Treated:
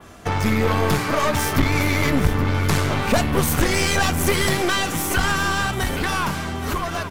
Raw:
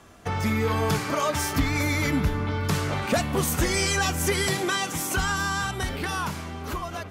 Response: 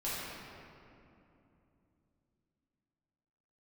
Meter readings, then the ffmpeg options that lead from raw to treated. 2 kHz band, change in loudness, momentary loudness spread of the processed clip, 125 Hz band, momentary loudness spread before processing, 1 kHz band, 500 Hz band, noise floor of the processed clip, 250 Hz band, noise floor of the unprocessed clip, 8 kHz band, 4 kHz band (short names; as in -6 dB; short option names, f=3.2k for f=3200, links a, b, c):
+5.0 dB, +5.0 dB, 5 LU, +5.5 dB, 7 LU, +5.5 dB, +5.0 dB, -28 dBFS, +5.5 dB, -37 dBFS, +2.5 dB, +4.5 dB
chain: -filter_complex "[0:a]adynamicequalizer=threshold=0.00631:dfrequency=6600:dqfactor=0.93:tfrequency=6600:tqfactor=0.93:attack=5:release=100:ratio=0.375:range=2.5:mode=cutabove:tftype=bell,aeval=exprs='clip(val(0),-1,0.0299)':c=same,asplit=2[a][b];[b]aecho=0:1:823|1646|2469|3292:0.237|0.107|0.048|0.0216[c];[a][c]amix=inputs=2:normalize=0,volume=7.5dB"